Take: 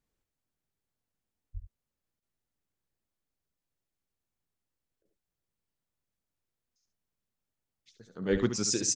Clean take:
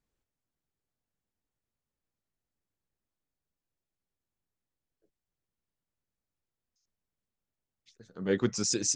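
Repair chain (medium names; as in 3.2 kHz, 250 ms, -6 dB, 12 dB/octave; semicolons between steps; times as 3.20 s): de-plosive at 1.53/8.31 s; interpolate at 2.20/5.03 s, 21 ms; inverse comb 71 ms -10 dB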